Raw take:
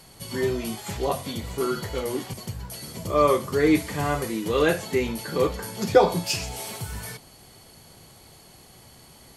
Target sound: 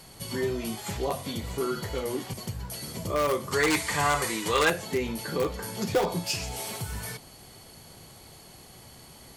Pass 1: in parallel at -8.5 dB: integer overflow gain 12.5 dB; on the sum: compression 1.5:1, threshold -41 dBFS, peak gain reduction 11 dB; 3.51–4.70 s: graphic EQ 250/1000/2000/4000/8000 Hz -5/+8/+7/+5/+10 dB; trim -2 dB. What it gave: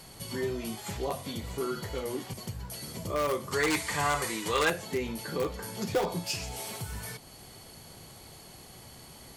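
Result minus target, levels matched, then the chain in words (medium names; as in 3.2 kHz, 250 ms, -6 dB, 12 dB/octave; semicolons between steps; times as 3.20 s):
compression: peak gain reduction +3.5 dB
in parallel at -8.5 dB: integer overflow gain 12.5 dB; on the sum: compression 1.5:1, threshold -31 dBFS, peak gain reduction 7.5 dB; 3.51–4.70 s: graphic EQ 250/1000/2000/4000/8000 Hz -5/+8/+7/+5/+10 dB; trim -2 dB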